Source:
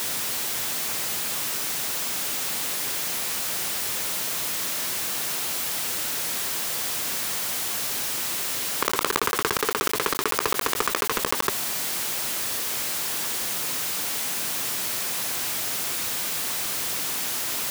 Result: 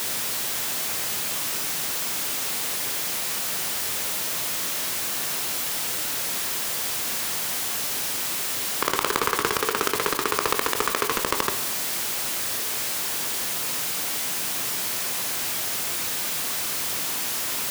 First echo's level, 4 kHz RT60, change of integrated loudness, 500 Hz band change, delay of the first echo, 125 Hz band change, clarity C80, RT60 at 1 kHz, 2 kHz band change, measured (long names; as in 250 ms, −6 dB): no echo audible, 0.60 s, +0.5 dB, +1.0 dB, no echo audible, +0.5 dB, 14.0 dB, 0.75 s, +0.5 dB